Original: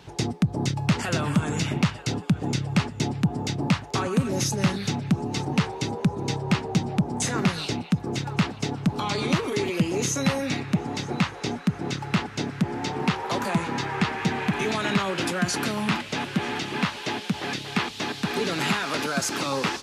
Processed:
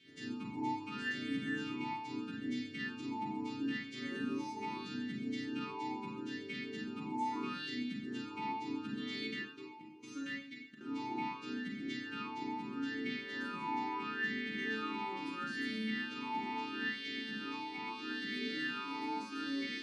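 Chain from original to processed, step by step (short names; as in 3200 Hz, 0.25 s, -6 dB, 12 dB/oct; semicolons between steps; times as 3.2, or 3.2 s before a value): frequency quantiser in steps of 2 st; 9.27–10.81 gate -21 dBFS, range -25 dB; limiter -18.5 dBFS, peak gain reduction 11.5 dB; resonator 440 Hz, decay 0.66 s, mix 80%; reverb, pre-delay 33 ms, DRR -2 dB; vowel sweep i-u 0.76 Hz; gain +9.5 dB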